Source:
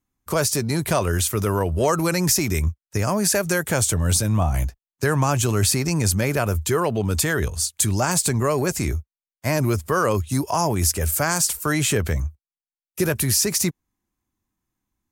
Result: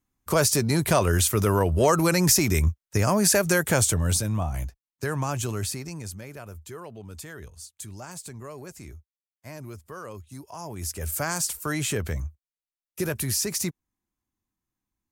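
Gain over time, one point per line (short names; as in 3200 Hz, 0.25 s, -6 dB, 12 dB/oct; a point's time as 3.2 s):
3.73 s 0 dB
4.51 s -8 dB
5.47 s -8 dB
6.25 s -19 dB
10.5 s -19 dB
11.16 s -6.5 dB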